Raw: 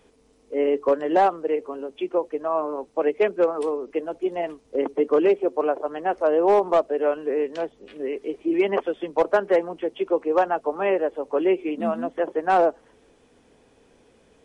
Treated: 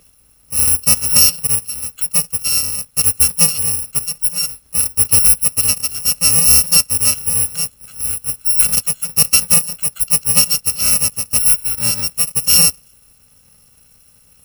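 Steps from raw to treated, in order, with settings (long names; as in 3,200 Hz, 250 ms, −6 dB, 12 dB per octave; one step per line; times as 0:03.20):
samples in bit-reversed order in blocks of 128 samples
level +7.5 dB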